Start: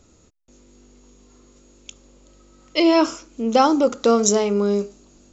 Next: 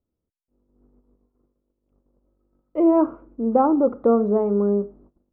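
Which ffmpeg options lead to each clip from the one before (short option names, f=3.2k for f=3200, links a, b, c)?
-af "lowpass=f=1.2k:w=0.5412,lowpass=f=1.2k:w=1.3066,agate=range=-26dB:threshold=-49dB:ratio=16:detection=peak,tiltshelf=f=920:g=3.5,volume=-3dB"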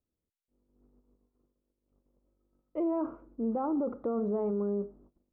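-af "alimiter=limit=-17.5dB:level=0:latency=1:release=24,volume=-7dB"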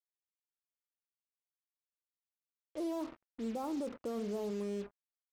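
-af "acrusher=bits=6:mix=0:aa=0.5,volume=-7dB"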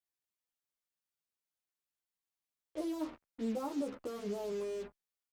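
-filter_complex "[0:a]asplit=2[a][b];[b]adelay=11.7,afreqshift=-0.53[c];[a][c]amix=inputs=2:normalize=1,volume=4dB"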